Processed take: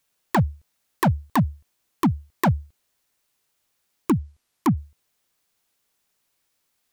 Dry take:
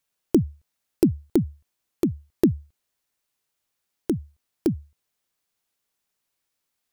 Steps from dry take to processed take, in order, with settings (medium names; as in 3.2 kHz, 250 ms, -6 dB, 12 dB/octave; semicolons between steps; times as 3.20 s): wavefolder -18.5 dBFS; 4.17–4.77 s: low-pass that closes with the level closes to 2 kHz, closed at -27.5 dBFS; trim +6.5 dB